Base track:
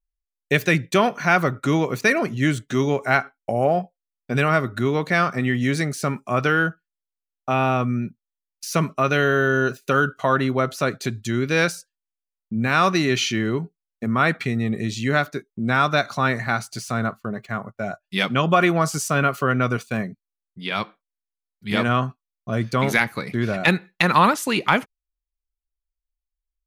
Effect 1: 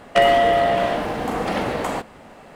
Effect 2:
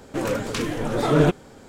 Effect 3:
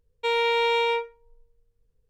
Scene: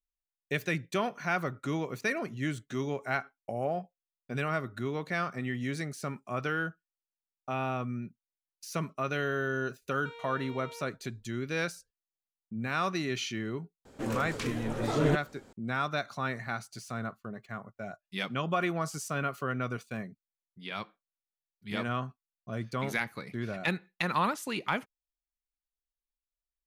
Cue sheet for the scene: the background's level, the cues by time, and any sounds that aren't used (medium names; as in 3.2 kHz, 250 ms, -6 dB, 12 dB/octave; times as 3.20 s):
base track -12.5 dB
9.82 s: add 3 -15 dB + compression, threshold -30 dBFS
13.85 s: add 2 -9.5 dB
not used: 1